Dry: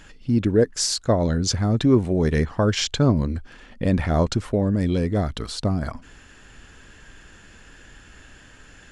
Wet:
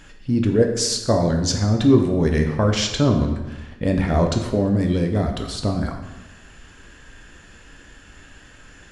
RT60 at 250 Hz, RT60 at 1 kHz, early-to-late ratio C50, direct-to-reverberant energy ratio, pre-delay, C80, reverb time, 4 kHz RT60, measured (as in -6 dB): 1.2 s, 1.1 s, 6.5 dB, 3.5 dB, 9 ms, 9.0 dB, 1.1 s, 0.85 s